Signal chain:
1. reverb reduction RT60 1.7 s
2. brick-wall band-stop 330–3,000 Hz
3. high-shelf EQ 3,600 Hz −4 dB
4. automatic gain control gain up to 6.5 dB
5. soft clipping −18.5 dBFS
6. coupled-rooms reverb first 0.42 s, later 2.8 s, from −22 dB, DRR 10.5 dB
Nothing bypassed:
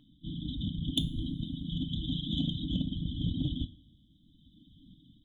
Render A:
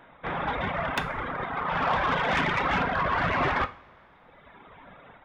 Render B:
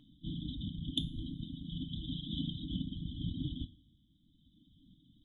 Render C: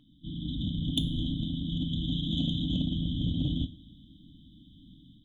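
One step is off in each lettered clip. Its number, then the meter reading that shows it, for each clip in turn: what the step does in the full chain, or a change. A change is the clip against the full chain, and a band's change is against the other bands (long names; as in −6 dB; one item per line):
2, 500 Hz band +26.0 dB
4, change in crest factor +5.0 dB
1, change in crest factor −2.5 dB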